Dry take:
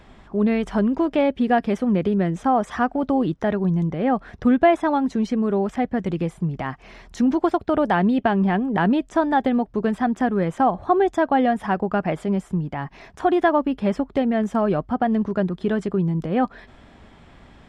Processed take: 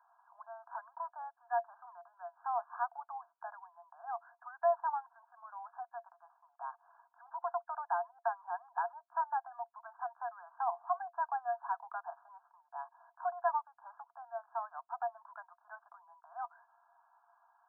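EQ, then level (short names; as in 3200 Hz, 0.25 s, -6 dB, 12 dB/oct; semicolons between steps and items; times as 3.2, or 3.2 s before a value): rippled Chebyshev high-pass 670 Hz, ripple 9 dB; brick-wall FIR low-pass 1700 Hz; fixed phaser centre 1100 Hz, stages 4; -5.5 dB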